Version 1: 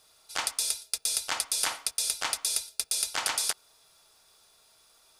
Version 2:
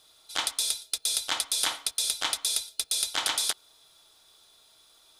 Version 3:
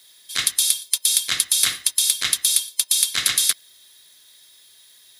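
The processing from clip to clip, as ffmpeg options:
ffmpeg -i in.wav -af "superequalizer=6b=1.58:13b=2.24" out.wav
ffmpeg -i in.wav -af "afftfilt=real='real(if(between(b,1,1008),(2*floor((b-1)/48)+1)*48-b,b),0)':imag='imag(if(between(b,1,1008),(2*floor((b-1)/48)+1)*48-b,b),0)*if(between(b,1,1008),-1,1)':win_size=2048:overlap=0.75,aexciter=amount=1.7:drive=4.1:freq=10000,tiltshelf=frequency=910:gain=-7,volume=1dB" out.wav

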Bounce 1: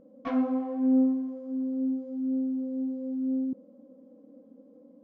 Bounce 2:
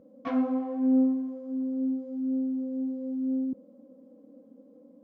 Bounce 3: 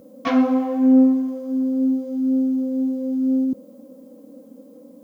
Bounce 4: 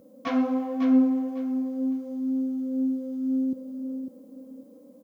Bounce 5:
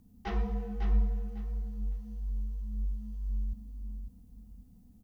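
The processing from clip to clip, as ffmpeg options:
ffmpeg -i in.wav -af "highpass=51" out.wav
ffmpeg -i in.wav -af "crystalizer=i=5:c=0,volume=9dB" out.wav
ffmpeg -i in.wav -af "aecho=1:1:551|1102|1653:0.447|0.0983|0.0216,volume=-7dB" out.wav
ffmpeg -i in.wav -af "afreqshift=-310,volume=-6dB" out.wav

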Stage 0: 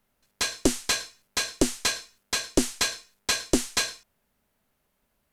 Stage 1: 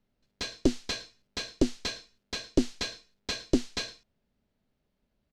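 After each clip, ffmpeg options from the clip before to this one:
ffmpeg -i in.wav -af "firequalizer=gain_entry='entry(230,0);entry(1000,-11);entry(4200,-6);entry(9400,-23)':delay=0.05:min_phase=1" out.wav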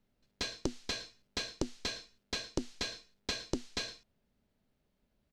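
ffmpeg -i in.wav -af "acompressor=threshold=-31dB:ratio=12" out.wav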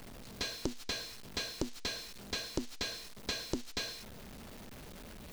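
ffmpeg -i in.wav -af "aeval=exprs='val(0)+0.5*0.00891*sgn(val(0))':channel_layout=same,volume=-2dB" out.wav

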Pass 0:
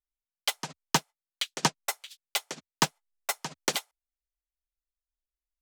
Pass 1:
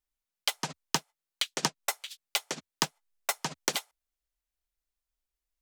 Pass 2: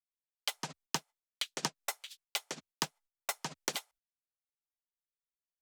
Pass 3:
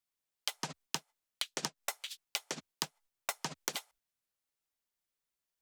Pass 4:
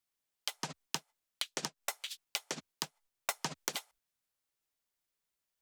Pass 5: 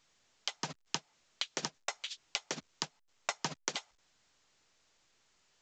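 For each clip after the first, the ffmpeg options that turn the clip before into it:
ffmpeg -i in.wav -af "acompressor=threshold=-29dB:ratio=6,volume=4dB" out.wav
ffmpeg -i in.wav -af "agate=range=-22dB:threshold=-56dB:ratio=16:detection=peak,volume=-6dB" out.wav
ffmpeg -i in.wav -af "acompressor=threshold=-39dB:ratio=6,volume=6dB" out.wav
ffmpeg -i in.wav -af "alimiter=limit=-17dB:level=0:latency=1:release=475,volume=1.5dB" out.wav
ffmpeg -i in.wav -af "volume=1dB" -ar 16000 -c:a pcm_alaw out.wav

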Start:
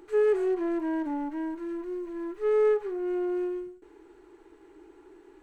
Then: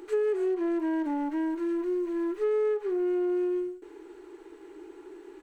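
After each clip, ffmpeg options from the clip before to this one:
ffmpeg -i in.wav -af "firequalizer=gain_entry='entry(150,0);entry(360,11);entry(640,7);entry(3000,10)':delay=0.05:min_phase=1,acompressor=threshold=-22dB:ratio=6,volume=-3.5dB" out.wav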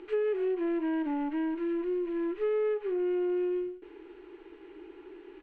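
ffmpeg -i in.wav -af "lowpass=frequency=2800:width_type=q:width=2.4,lowshelf=frequency=210:gain=7.5,volume=-4dB" out.wav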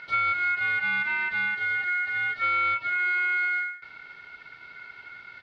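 ffmpeg -i in.wav -af "aeval=exprs='val(0)*sin(2*PI*1800*n/s)':channel_layout=same,volume=6.5dB" out.wav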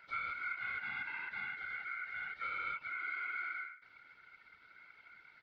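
ffmpeg -i in.wav -af "afftfilt=real='hypot(re,im)*cos(2*PI*random(0))':imag='hypot(re,im)*sin(2*PI*random(1))':win_size=512:overlap=0.75,volume=-9dB" out.wav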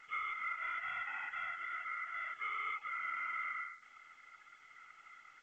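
ffmpeg -i in.wav -af "asoftclip=type=tanh:threshold=-30.5dB,lowpass=frequency=3000:width_type=q:width=0.5098,lowpass=frequency=3000:width_type=q:width=0.6013,lowpass=frequency=3000:width_type=q:width=0.9,lowpass=frequency=3000:width_type=q:width=2.563,afreqshift=-3500,volume=1dB" -ar 16000 -c:a pcm_alaw out.wav

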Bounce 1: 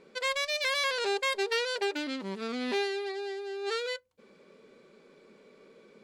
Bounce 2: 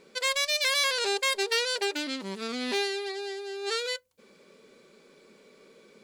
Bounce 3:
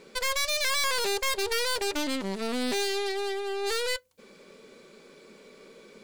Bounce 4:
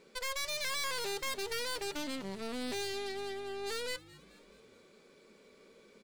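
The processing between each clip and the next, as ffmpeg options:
ffmpeg -i in.wav -af "highshelf=frequency=4100:gain=12" out.wav
ffmpeg -i in.wav -af "aeval=exprs='(tanh(50.1*val(0)+0.7)-tanh(0.7))/50.1':channel_layout=same,volume=8.5dB" out.wav
ffmpeg -i in.wav -filter_complex "[0:a]asplit=6[link_01][link_02][link_03][link_04][link_05][link_06];[link_02]adelay=214,afreqshift=-150,volume=-20dB[link_07];[link_03]adelay=428,afreqshift=-300,volume=-24.9dB[link_08];[link_04]adelay=642,afreqshift=-450,volume=-29.8dB[link_09];[link_05]adelay=856,afreqshift=-600,volume=-34.6dB[link_10];[link_06]adelay=1070,afreqshift=-750,volume=-39.5dB[link_11];[link_01][link_07][link_08][link_09][link_10][link_11]amix=inputs=6:normalize=0,volume=-9dB" out.wav

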